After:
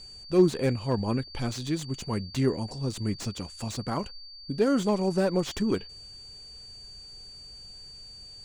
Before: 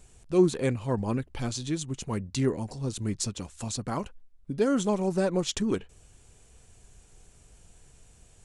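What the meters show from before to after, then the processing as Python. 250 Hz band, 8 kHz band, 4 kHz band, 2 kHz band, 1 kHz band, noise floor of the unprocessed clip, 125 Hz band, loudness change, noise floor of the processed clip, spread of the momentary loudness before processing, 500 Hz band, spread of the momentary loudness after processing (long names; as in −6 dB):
+1.0 dB, −5.0 dB, +2.5 dB, +0.5 dB, +1.0 dB, −58 dBFS, +1.0 dB, +1.0 dB, −47 dBFS, 10 LU, +1.0 dB, 19 LU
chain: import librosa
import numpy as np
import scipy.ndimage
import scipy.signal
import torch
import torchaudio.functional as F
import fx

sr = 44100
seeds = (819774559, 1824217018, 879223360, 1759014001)

y = x + 10.0 ** (-45.0 / 20.0) * np.sin(2.0 * np.pi * 4600.0 * np.arange(len(x)) / sr)
y = fx.slew_limit(y, sr, full_power_hz=78.0)
y = y * librosa.db_to_amplitude(1.0)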